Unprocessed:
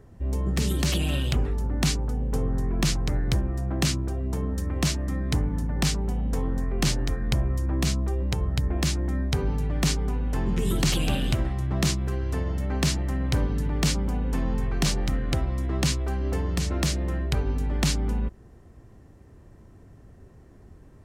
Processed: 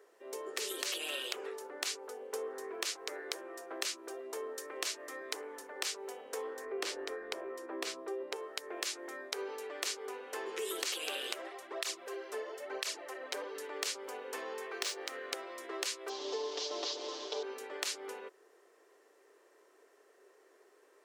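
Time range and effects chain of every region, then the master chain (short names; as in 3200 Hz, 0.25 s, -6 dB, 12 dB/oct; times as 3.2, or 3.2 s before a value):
6.65–8.36 tilt -2.5 dB/oct + notch 6500 Hz, Q 22
11.34–13.55 bell 640 Hz +5 dB 0.81 oct + tape flanging out of phase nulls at 1 Hz, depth 6.2 ms
14.7–15.13 median filter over 3 samples + HPF 47 Hz
16.09–17.43 delta modulation 32 kbps, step -32 dBFS + band shelf 1800 Hz -13 dB 1.3 oct + comb 6.8 ms, depth 86%
whole clip: elliptic high-pass 410 Hz, stop band 60 dB; bell 760 Hz -7 dB 0.97 oct; compressor 4:1, threshold -34 dBFS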